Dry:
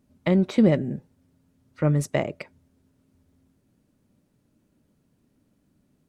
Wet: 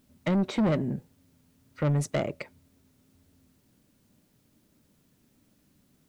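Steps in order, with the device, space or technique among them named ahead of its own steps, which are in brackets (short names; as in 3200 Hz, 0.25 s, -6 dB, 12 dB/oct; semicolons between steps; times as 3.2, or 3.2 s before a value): compact cassette (soft clip -20.5 dBFS, distortion -10 dB; LPF 9600 Hz; wow and flutter; white noise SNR 40 dB)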